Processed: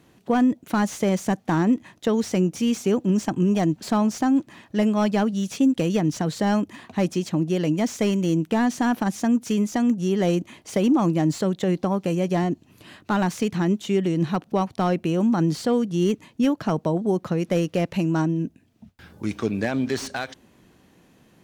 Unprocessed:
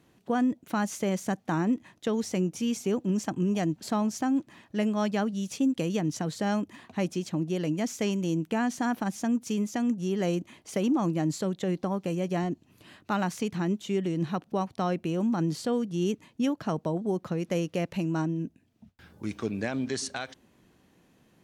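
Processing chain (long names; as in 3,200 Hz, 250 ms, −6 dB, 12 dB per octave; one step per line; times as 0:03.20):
slew-rate limiting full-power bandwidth 62 Hz
level +6.5 dB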